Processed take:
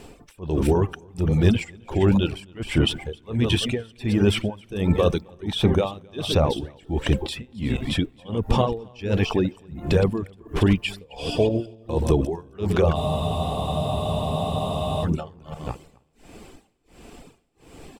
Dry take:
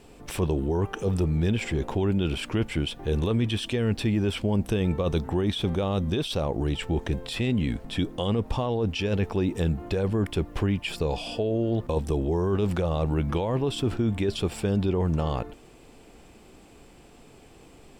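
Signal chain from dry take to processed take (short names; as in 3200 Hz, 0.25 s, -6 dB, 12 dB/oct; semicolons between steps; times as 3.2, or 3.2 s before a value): regenerating reverse delay 0.169 s, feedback 45%, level -7.5 dB; tremolo 1.4 Hz, depth 97%; on a send: echo 0.265 s -18 dB; on the sum: reverb removal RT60 0.95 s; spectral freeze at 12.97, 2.06 s; gain +8 dB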